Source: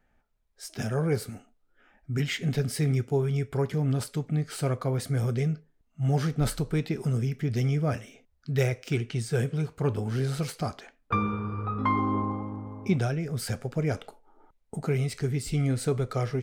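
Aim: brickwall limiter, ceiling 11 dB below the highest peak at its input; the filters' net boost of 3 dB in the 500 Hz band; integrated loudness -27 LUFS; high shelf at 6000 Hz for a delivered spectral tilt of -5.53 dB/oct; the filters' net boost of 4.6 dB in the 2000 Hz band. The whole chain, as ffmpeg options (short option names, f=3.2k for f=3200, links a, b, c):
-af "equalizer=f=500:t=o:g=3.5,equalizer=f=2k:t=o:g=4.5,highshelf=f=6k:g=7.5,volume=5dB,alimiter=limit=-18dB:level=0:latency=1"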